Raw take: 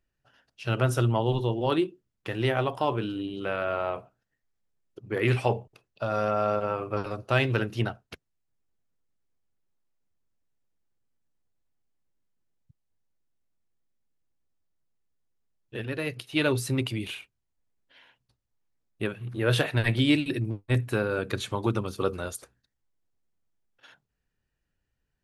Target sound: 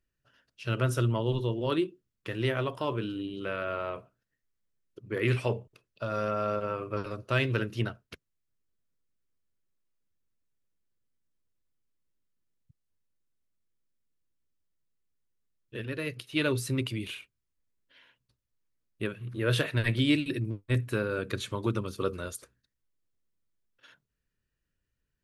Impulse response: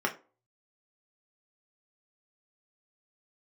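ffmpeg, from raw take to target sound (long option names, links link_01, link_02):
-af "equalizer=frequency=780:width_type=o:width=0.29:gain=-13.5,volume=-2.5dB"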